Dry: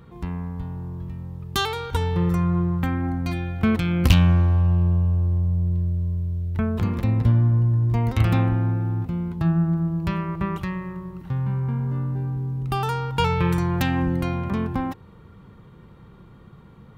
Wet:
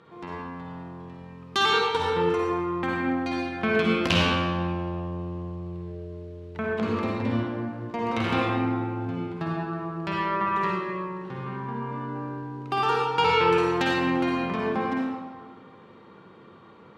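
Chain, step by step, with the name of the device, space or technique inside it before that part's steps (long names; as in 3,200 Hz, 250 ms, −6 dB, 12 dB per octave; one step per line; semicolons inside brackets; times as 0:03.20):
supermarket ceiling speaker (band-pass filter 330–5,200 Hz; convolution reverb RT60 1.5 s, pre-delay 47 ms, DRR −3 dB)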